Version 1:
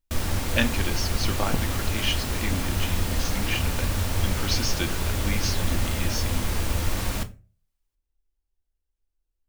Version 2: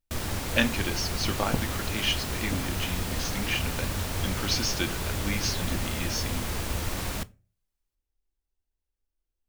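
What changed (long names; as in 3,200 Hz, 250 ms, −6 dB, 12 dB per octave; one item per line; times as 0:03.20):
background: send −10.5 dB
master: add low-shelf EQ 70 Hz −6 dB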